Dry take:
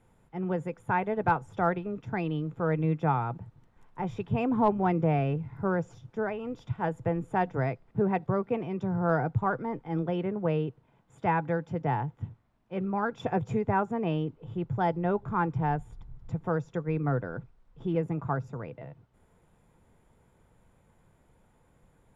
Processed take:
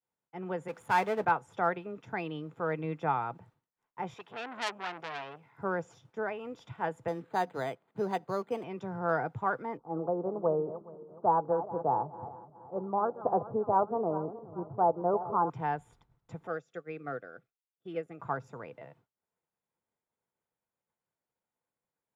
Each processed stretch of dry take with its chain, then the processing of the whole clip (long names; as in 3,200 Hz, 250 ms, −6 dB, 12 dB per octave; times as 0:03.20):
0:00.68–0:01.25: power curve on the samples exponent 0.7 + multiband upward and downward expander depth 70%
0:04.14–0:05.58: high-pass filter 650 Hz 6 dB per octave + saturating transformer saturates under 3,500 Hz
0:07.08–0:08.64: one scale factor per block 7 bits + high-pass filter 140 Hz + linearly interpolated sample-rate reduction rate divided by 8×
0:09.77–0:15.50: feedback delay that plays each chunk backwards 210 ms, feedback 66%, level −13 dB + elliptic low-pass filter 1,200 Hz, stop band 50 dB + dynamic equaliser 620 Hz, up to +6 dB, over −41 dBFS, Q 0.9
0:16.47–0:18.20: Butterworth band-reject 950 Hz, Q 2.6 + low-shelf EQ 160 Hz −12 dB + expander for the loud parts, over −46 dBFS
whole clip: high-pass filter 540 Hz 6 dB per octave; downward expander −56 dBFS